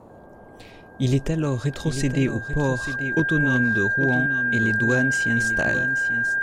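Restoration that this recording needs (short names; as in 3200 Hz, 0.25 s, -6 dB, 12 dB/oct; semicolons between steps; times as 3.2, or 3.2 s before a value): clip repair -11 dBFS; notch 1600 Hz, Q 30; noise print and reduce 24 dB; inverse comb 0.84 s -10 dB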